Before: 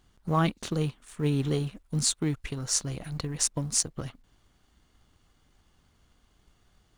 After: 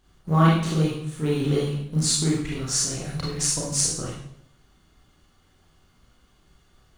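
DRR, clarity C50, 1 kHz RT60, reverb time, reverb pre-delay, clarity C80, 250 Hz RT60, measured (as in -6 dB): -5.5 dB, 1.0 dB, 0.65 s, 0.70 s, 28 ms, 5.5 dB, 0.75 s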